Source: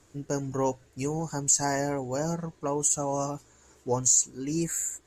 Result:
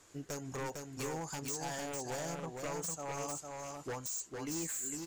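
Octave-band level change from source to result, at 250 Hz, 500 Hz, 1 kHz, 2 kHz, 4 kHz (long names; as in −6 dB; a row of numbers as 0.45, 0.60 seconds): −11.0, −10.5, −9.5, −5.0, −6.5 decibels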